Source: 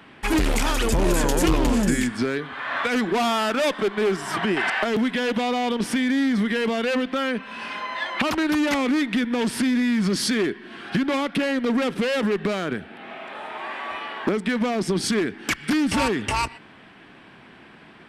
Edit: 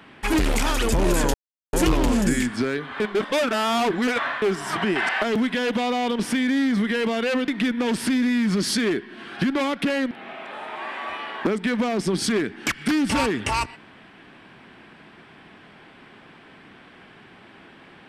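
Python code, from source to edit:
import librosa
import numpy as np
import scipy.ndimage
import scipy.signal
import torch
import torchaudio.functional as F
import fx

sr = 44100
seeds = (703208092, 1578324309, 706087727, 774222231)

y = fx.edit(x, sr, fx.insert_silence(at_s=1.34, length_s=0.39),
    fx.reverse_span(start_s=2.61, length_s=1.42),
    fx.cut(start_s=7.09, length_s=1.92),
    fx.cut(start_s=11.64, length_s=1.29), tone=tone)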